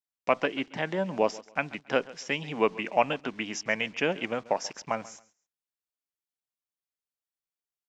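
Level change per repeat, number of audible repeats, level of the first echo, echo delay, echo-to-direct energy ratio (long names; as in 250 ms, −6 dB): −12.5 dB, 2, −20.0 dB, 137 ms, −20.0 dB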